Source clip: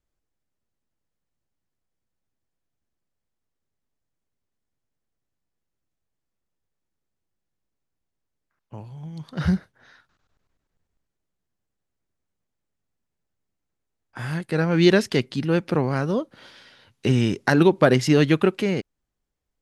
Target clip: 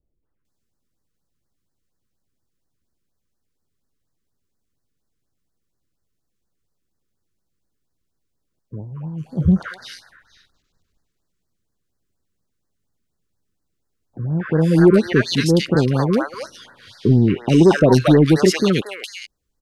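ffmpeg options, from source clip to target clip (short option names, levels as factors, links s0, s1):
-filter_complex "[0:a]acrossover=split=670|2200[s0][s1][s2];[s1]adelay=230[s3];[s2]adelay=450[s4];[s0][s3][s4]amix=inputs=3:normalize=0,acontrast=86,afftfilt=real='re*(1-between(b*sr/1024,680*pow(2900/680,0.5+0.5*sin(2*PI*4.2*pts/sr))/1.41,680*pow(2900/680,0.5+0.5*sin(2*PI*4.2*pts/sr))*1.41))':imag='im*(1-between(b*sr/1024,680*pow(2900/680,0.5+0.5*sin(2*PI*4.2*pts/sr))/1.41,680*pow(2900/680,0.5+0.5*sin(2*PI*4.2*pts/sr))*1.41))':win_size=1024:overlap=0.75"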